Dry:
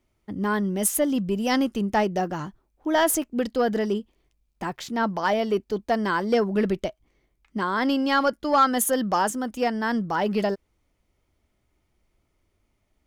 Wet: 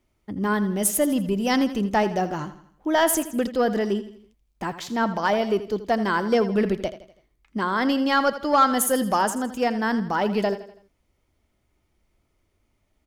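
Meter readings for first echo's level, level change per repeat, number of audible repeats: −13.5 dB, −7.0 dB, 4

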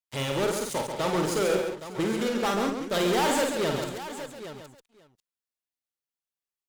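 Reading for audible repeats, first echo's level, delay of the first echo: 8, −5.0 dB, 51 ms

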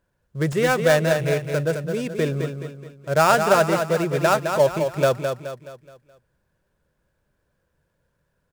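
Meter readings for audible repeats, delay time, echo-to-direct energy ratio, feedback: 4, 212 ms, −5.5 dB, 43%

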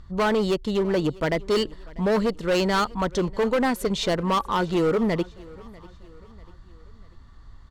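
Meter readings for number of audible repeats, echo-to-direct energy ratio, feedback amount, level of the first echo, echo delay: 2, −21.5 dB, 46%, −22.5 dB, 643 ms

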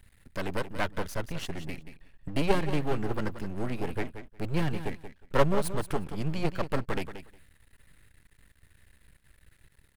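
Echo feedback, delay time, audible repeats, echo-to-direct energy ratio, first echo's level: 15%, 180 ms, 2, −11.0 dB, −11.0 dB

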